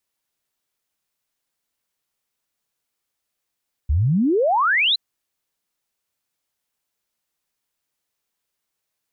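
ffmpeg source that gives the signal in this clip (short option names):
-f lavfi -i "aevalsrc='0.178*clip(min(t,1.07-t)/0.01,0,1)*sin(2*PI*65*1.07/log(4200/65)*(exp(log(4200/65)*t/1.07)-1))':d=1.07:s=44100"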